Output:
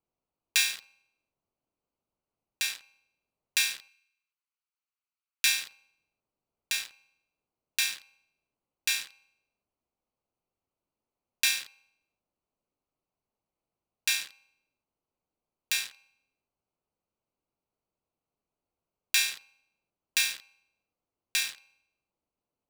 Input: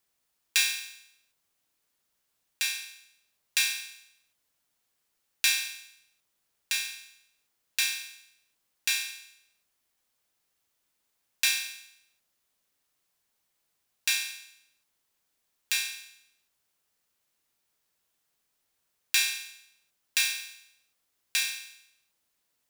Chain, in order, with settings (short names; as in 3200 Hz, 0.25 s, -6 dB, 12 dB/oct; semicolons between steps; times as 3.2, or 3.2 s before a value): Wiener smoothing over 25 samples; 3.88–5.46 HPF 1300 Hz 24 dB/oct